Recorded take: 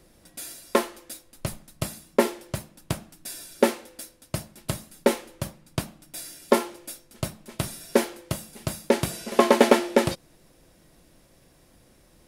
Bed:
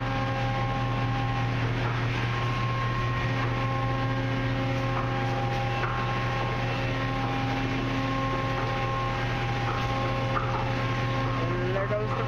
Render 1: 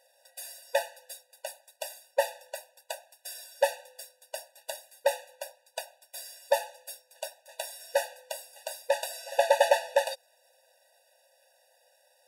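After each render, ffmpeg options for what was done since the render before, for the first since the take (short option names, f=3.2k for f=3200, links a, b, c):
-af "aeval=exprs='if(lt(val(0),0),0.708*val(0),val(0))':c=same,afftfilt=real='re*eq(mod(floor(b*sr/1024/490),2),1)':imag='im*eq(mod(floor(b*sr/1024/490),2),1)':win_size=1024:overlap=0.75"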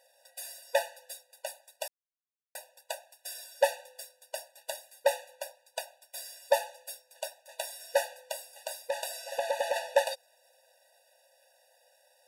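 -filter_complex "[0:a]asplit=3[a][b][c];[a]afade=t=out:st=8.5:d=0.02[d];[b]acompressor=threshold=-29dB:ratio=2.5:attack=3.2:release=140:knee=1:detection=peak,afade=t=in:st=8.5:d=0.02,afade=t=out:st=9.75:d=0.02[e];[c]afade=t=in:st=9.75:d=0.02[f];[d][e][f]amix=inputs=3:normalize=0,asplit=3[g][h][i];[g]atrim=end=1.88,asetpts=PTS-STARTPTS,afade=t=out:st=1.876:d=0.004:c=hsin[j];[h]atrim=start=1.88:end=2.55,asetpts=PTS-STARTPTS,volume=0[k];[i]atrim=start=2.55,asetpts=PTS-STARTPTS,afade=t=in:d=0.004:c=hsin[l];[j][k][l]concat=n=3:v=0:a=1"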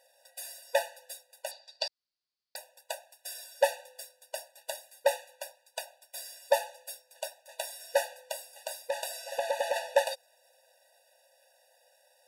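-filter_complex "[0:a]asettb=1/sr,asplit=3[a][b][c];[a]atrim=end=1.514[d];[b]atrim=start=1.51:end=2.56,asetpts=PTS-STARTPTS,afade=t=in:d=0.004:c=qsin,afade=t=out:st=1.046:d=0.004:c=qsin,lowpass=f=4.6k:t=q:w=6.8[e];[c]atrim=start=2.556[f];[d][e]acrossfade=d=0.004:c1=hsin:c2=qsin[g];[g][f]acrossfade=d=0.004:c1=qsin:c2=hsin,asettb=1/sr,asplit=3[h][i][j];[h]atrim=end=5.164[k];[i]atrim=start=5.16:end=5.82,asetpts=PTS-STARTPTS,afade=t=in:d=0.004:c=qsin,afade=t=out:st=0.656:d=0.004:c=qsin,lowshelf=f=380:g=-10[l];[j]atrim=start=5.816[m];[k][l]acrossfade=d=0.004:c1=hsin:c2=qsin[n];[n][m]acrossfade=d=0.004:c1=qsin:c2=hsin"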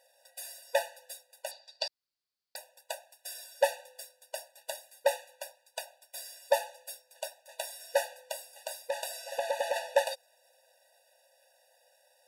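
-af "volume=-1dB"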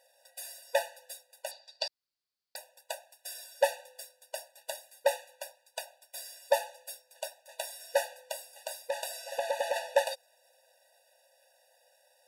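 -af anull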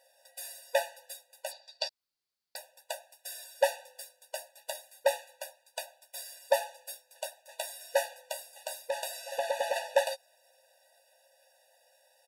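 -filter_complex "[0:a]asplit=2[a][b];[b]adelay=13,volume=-8dB[c];[a][c]amix=inputs=2:normalize=0"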